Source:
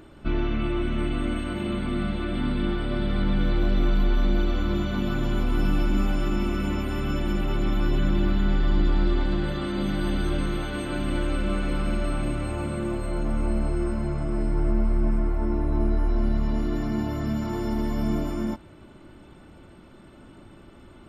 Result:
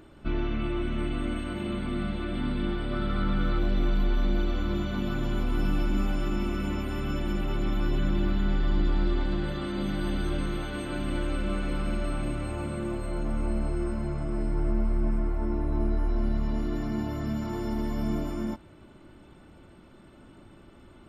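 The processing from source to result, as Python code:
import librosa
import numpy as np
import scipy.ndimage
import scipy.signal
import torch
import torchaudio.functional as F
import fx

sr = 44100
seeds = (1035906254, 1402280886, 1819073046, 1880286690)

y = fx.peak_eq(x, sr, hz=1300.0, db=12.0, octaves=0.22, at=(2.93, 3.59))
y = y * 10.0 ** (-3.5 / 20.0)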